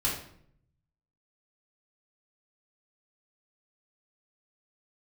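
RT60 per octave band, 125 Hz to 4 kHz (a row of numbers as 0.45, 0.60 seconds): 1.3, 0.85, 0.70, 0.60, 0.55, 0.45 seconds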